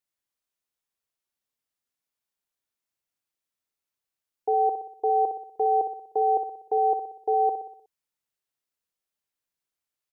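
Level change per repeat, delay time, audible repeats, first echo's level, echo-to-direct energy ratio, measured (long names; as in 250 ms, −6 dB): −5.5 dB, 61 ms, 5, −8.5 dB, −7.0 dB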